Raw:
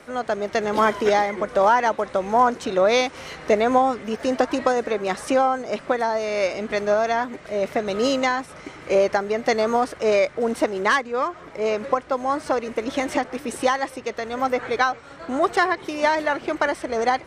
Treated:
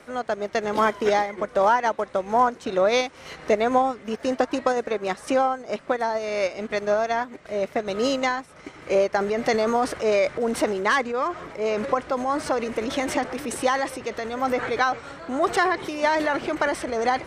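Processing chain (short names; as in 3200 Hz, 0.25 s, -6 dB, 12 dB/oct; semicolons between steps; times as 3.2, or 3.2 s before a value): transient shaper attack 0 dB, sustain -6 dB, from 9.15 s sustain +7 dB; gain -2 dB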